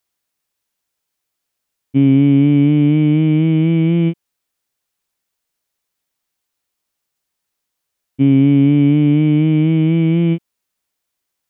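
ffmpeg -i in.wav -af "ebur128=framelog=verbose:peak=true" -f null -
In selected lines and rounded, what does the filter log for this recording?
Integrated loudness:
  I:         -13.3 LUFS
  Threshold: -23.5 LUFS
Loudness range:
  LRA:         7.8 LU
  Threshold: -35.9 LUFS
  LRA low:   -22.0 LUFS
  LRA high:  -14.2 LUFS
True peak:
  Peak:       -3.5 dBFS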